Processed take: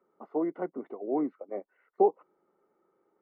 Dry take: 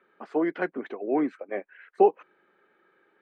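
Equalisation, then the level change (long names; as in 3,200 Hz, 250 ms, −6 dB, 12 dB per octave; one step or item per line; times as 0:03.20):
Savitzky-Golay smoothing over 65 samples
−4.0 dB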